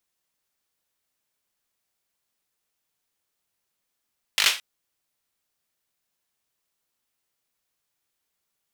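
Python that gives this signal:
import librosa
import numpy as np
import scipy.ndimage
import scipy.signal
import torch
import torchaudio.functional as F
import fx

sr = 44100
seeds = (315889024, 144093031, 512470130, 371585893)

y = fx.drum_clap(sr, seeds[0], length_s=0.22, bursts=5, spacing_ms=20, hz=2800.0, decay_s=0.31)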